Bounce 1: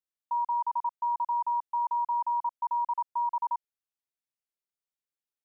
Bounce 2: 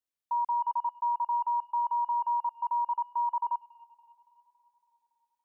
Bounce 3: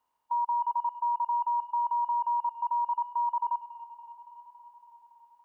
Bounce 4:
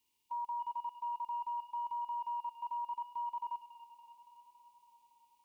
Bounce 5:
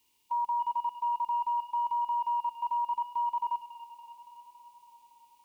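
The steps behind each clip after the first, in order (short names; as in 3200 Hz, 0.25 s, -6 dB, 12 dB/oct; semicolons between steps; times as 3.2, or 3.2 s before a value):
tape echo 0.281 s, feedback 83%, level -20.5 dB, low-pass 1100 Hz
per-bin compression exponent 0.6
EQ curve 400 Hz 0 dB, 650 Hz -21 dB, 960 Hz -11 dB, 1400 Hz -22 dB, 2400 Hz +7 dB; gain +1 dB
notches 60/120/180/240 Hz; gain +8.5 dB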